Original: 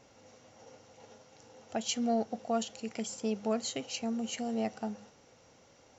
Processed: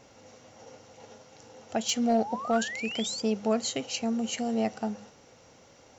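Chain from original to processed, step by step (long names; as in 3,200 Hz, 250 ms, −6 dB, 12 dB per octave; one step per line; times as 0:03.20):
0:02.10–0:03.22: sound drawn into the spectrogram rise 610–4,900 Hz −42 dBFS
0:01.87–0:03.38: gain into a clipping stage and back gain 22.5 dB
level +5 dB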